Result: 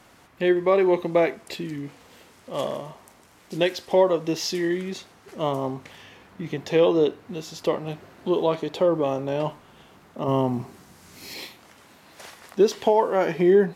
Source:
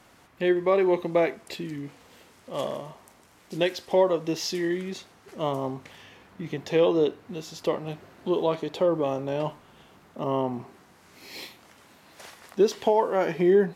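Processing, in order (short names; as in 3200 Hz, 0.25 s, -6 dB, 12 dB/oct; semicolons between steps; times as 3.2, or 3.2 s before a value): 10.28–11.34 tone controls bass +7 dB, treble +7 dB; gain +2.5 dB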